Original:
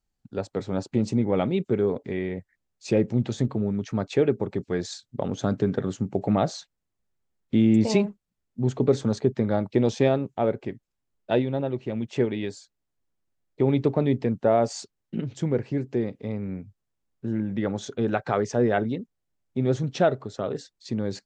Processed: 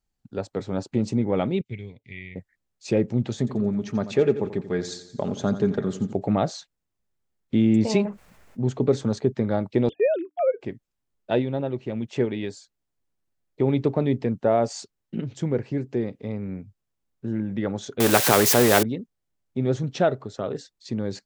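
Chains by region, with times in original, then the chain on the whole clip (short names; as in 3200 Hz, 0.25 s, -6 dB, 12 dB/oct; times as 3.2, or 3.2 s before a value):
1.61–2.36 EQ curve 110 Hz 0 dB, 160 Hz -7 dB, 440 Hz -20 dB, 880 Hz -19 dB, 1400 Hz -29 dB, 2100 Hz +7 dB, 9600 Hz -10 dB + upward expander, over -47 dBFS
3.38–6.13 comb 4.9 ms, depth 33% + feedback echo 87 ms, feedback 52%, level -13 dB
8.05–8.62 band shelf 1100 Hz +9 dB 2.7 oct + fast leveller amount 50%
9.89–10.61 sine-wave speech + notches 60/120/180/240/300 Hz + gate -45 dBFS, range -17 dB
18–18.83 switching spikes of -25.5 dBFS + bell 400 Hz +10.5 dB 2.6 oct + spectral compressor 2:1
whole clip: dry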